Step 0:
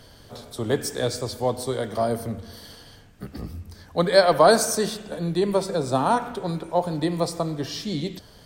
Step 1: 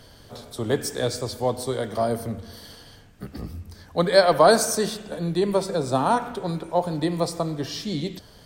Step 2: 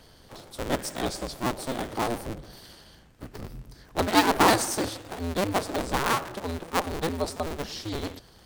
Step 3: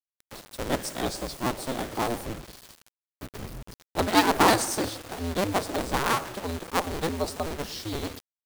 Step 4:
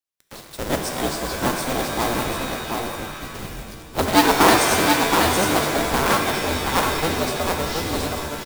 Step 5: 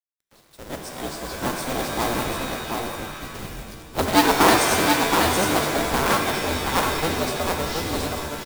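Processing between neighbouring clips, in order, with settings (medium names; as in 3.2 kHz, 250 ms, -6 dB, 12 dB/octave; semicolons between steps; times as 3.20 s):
no audible change
cycle switcher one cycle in 2, inverted; trim -4.5 dB
bit crusher 7-bit
delay 724 ms -4 dB; modulation noise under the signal 14 dB; pitch-shifted reverb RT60 1.6 s, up +7 st, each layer -2 dB, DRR 5.5 dB; trim +3.5 dB
fade-in on the opening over 1.98 s; trim -1.5 dB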